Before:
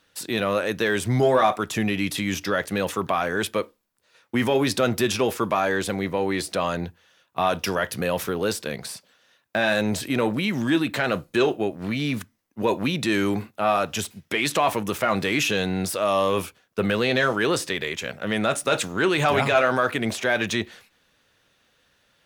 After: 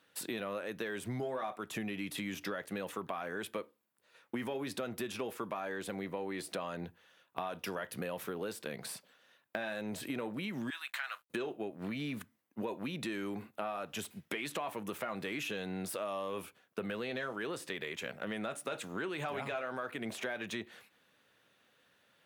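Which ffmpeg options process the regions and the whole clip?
ffmpeg -i in.wav -filter_complex "[0:a]asettb=1/sr,asplit=3[link_01][link_02][link_03];[link_01]atrim=end=10.704[link_04];[link_02]atrim=start=10.7:end=11.3,asetpts=PTS-STARTPTS,afade=type=in:duration=0.004:curve=qsin,afade=type=out:start_time=0.596:duration=0.004:curve=qsin,highpass=frequency=1100:width=0.5412,highpass=frequency=1100:width=1.3066,aeval=exprs='sgn(val(0))*max(abs(val(0))-0.00126,0)':channel_layout=same[link_05];[link_03]atrim=start=11.296[link_06];[link_04][link_05]acrossfade=duration=0.004:curve1=hsin:curve2=qsin[link_07];[link_07][link_06]acrossfade=duration=0.004:curve1=qsin:curve2=hsin,highpass=140,equalizer=frequency=5600:width=1.2:gain=-6.5,acompressor=threshold=-32dB:ratio=6,volume=-4dB" out.wav

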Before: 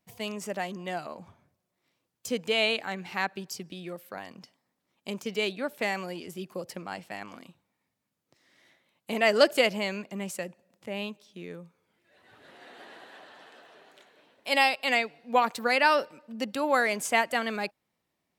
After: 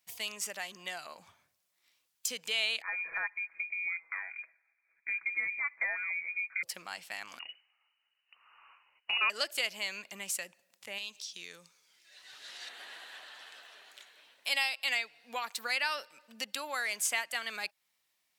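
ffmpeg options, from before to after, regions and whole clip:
ffmpeg -i in.wav -filter_complex "[0:a]asettb=1/sr,asplit=3[link_01][link_02][link_03];[link_01]atrim=end=2.824[link_04];[link_02]atrim=start=2.82:end=6.63,asetpts=PTS-STARTPTS,afade=type=in:duration=0.004:curve=qsin,afade=type=out:start_time=3.806:duration=0.004:curve=qsin,aecho=1:1:6.2:0.54,atrim=end_sample=168021,lowpass=frequency=2200:width_type=q:width=0.5098,lowpass=frequency=2200:width_type=q:width=0.6013,lowpass=frequency=2200:width_type=q:width=0.9,lowpass=frequency=2200:width_type=q:width=2.563,afreqshift=-2600[link_05];[link_03]atrim=start=6.626[link_06];[link_04][link_05]acrossfade=duration=0.004:curve1=hsin:curve2=qsin[link_07];[link_07][link_06]acrossfade=duration=0.004:curve1=qsin:curve2=hsin,asettb=1/sr,asplit=3[link_08][link_09][link_10];[link_08]atrim=end=7.394[link_11];[link_09]atrim=start=7.39:end=9.3,asetpts=PTS-STARTPTS,afade=type=in:duration=0.004:curve=qsin,afade=type=out:start_time=1.906:duration=0.004:curve=qsin,equalizer=frequency=2300:width_type=o:width=2.2:gain=6,lowpass=frequency=2600:width_type=q:width=0.5098,lowpass=frequency=2600:width_type=q:width=0.6013,lowpass=frequency=2600:width_type=q:width=0.9,lowpass=frequency=2600:width_type=q:width=2.563,afreqshift=-3100[link_12];[link_10]atrim=start=9.296[link_13];[link_11][link_12]acrossfade=duration=0.004:curve1=hsin:curve2=qsin[link_14];[link_14][link_13]acrossfade=duration=0.004:curve1=qsin:curve2=hsin,asettb=1/sr,asplit=3[link_15][link_16][link_17];[link_15]atrim=end=10.984[link_18];[link_16]atrim=start=10.98:end=12.69,asetpts=PTS-STARTPTS,afade=type=in:duration=0.004:curve=qsin,afade=type=out:start_time=1.706:duration=0.004:curve=qsin,equalizer=frequency=5600:width=0.93:gain=13,acompressor=threshold=-42dB:ratio=2:attack=3.2:release=140:knee=1:detection=peak,highpass=98[link_19];[link_17]atrim=start=12.686[link_20];[link_18][link_19]acrossfade=duration=0.004:curve1=hsin:curve2=qsin[link_21];[link_21][link_20]acrossfade=duration=0.004:curve1=qsin:curve2=hsin,equalizer=frequency=190:width=0.47:gain=-6,acompressor=threshold=-38dB:ratio=2,tiltshelf=frequency=1100:gain=-9.5,volume=-1.5dB" out.wav

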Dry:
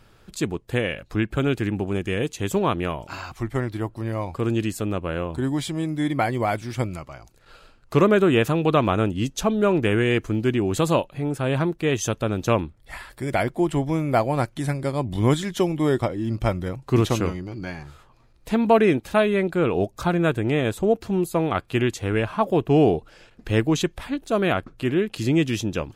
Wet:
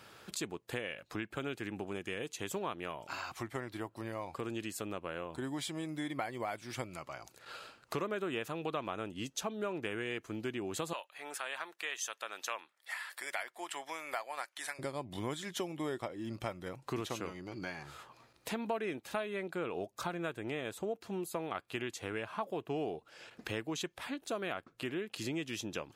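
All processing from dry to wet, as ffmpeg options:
ffmpeg -i in.wav -filter_complex "[0:a]asettb=1/sr,asplit=3[link_01][link_02][link_03];[link_01]atrim=end=10.934[link_04];[link_02]atrim=start=10.93:end=14.79,asetpts=PTS-STARTPTS,afade=type=in:duration=0.004:curve=qsin,afade=type=out:start_time=3.856:duration=0.004:curve=qsin,highpass=1000,equalizer=frequency=1800:width=7.3:gain=4[link_05];[link_03]atrim=start=14.786[link_06];[link_04][link_05]acrossfade=duration=0.004:curve1=hsin:curve2=qsin[link_07];[link_07][link_06]acrossfade=duration=0.004:curve1=qsin:curve2=hsin,highpass=96,lowshelf=frequency=310:gain=-12,acompressor=threshold=-44dB:ratio=3,volume=3.5dB" out.wav

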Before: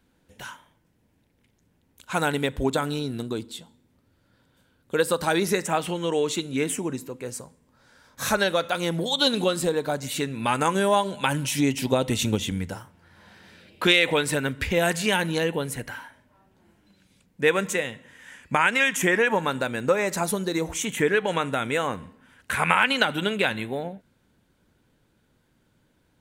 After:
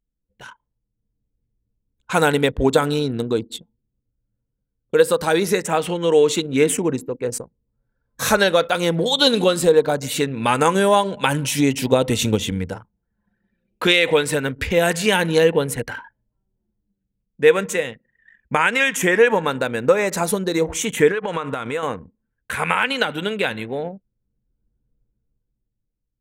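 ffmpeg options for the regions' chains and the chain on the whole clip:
ffmpeg -i in.wav -filter_complex "[0:a]asettb=1/sr,asplit=3[link_01][link_02][link_03];[link_01]atrim=end=21.114[link_04];[link_02]atrim=start=21.11:end=21.83,asetpts=PTS-STARTPTS,afade=type=in:duration=0.004:curve=qsin,afade=type=out:start_time=0.716:duration=0.004:curve=qsin,equalizer=frequency=1100:width_type=o:width=0.5:gain=8.5,acompressor=threshold=-25dB:ratio=8:attack=3.2:release=140:knee=1:detection=peak[link_05];[link_03]atrim=start=21.826[link_06];[link_04][link_05]acrossfade=duration=0.004:curve1=hsin:curve2=qsin[link_07];[link_07][link_06]acrossfade=duration=0.004:curve1=qsin:curve2=hsin,anlmdn=1,equalizer=frequency=470:width=7.2:gain=7.5,dynaudnorm=framelen=120:gausssize=17:maxgain=11.5dB,volume=-1dB" out.wav

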